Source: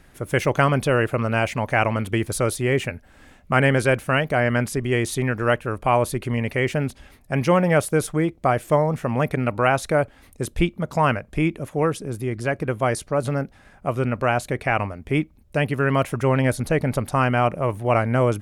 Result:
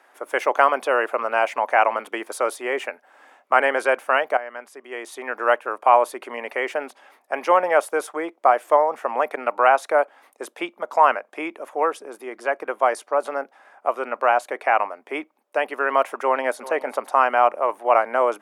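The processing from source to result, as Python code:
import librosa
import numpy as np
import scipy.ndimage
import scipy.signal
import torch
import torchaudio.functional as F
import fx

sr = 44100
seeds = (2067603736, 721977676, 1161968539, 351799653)

y = fx.echo_throw(x, sr, start_s=16.24, length_s=0.45, ms=380, feedback_pct=10, wet_db=-16.5)
y = fx.edit(y, sr, fx.fade_in_from(start_s=4.37, length_s=1.07, curve='qua', floor_db=-14.0), tone=tone)
y = scipy.signal.sosfilt(scipy.signal.bessel(8, 470.0, 'highpass', norm='mag', fs=sr, output='sos'), y)
y = fx.peak_eq(y, sr, hz=890.0, db=14.5, octaves=2.1)
y = fx.notch(y, sr, hz=4100.0, q=22.0)
y = F.gain(torch.from_numpy(y), -7.0).numpy()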